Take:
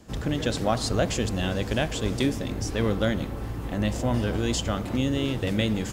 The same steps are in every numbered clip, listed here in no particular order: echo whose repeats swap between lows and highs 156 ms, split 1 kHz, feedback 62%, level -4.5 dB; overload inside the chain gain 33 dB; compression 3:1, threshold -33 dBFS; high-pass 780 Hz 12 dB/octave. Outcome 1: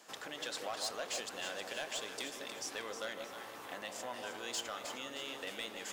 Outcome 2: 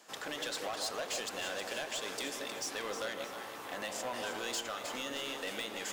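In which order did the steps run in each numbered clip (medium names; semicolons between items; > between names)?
compression > high-pass > overload inside the chain > echo whose repeats swap between lows and highs; high-pass > compression > overload inside the chain > echo whose repeats swap between lows and highs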